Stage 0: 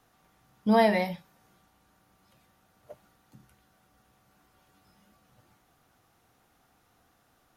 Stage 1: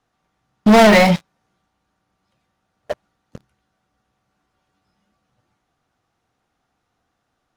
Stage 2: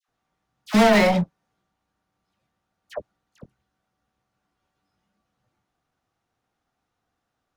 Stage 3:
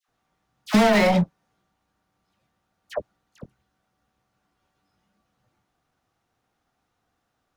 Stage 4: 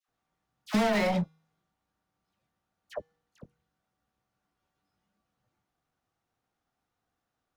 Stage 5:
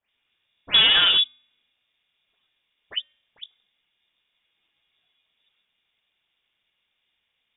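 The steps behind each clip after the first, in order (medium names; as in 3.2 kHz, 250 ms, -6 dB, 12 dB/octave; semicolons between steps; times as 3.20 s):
low-pass 7.4 kHz 12 dB/octave; waveshaping leveller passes 5; trim +4.5 dB
phase dispersion lows, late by 82 ms, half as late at 1.3 kHz; trim -6.5 dB
compression, threshold -17 dBFS, peak gain reduction 6 dB; trim +3.5 dB
feedback comb 160 Hz, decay 0.7 s, harmonics odd, mix 30%; trim -5.5 dB
frequency inversion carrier 3.6 kHz; trim +8.5 dB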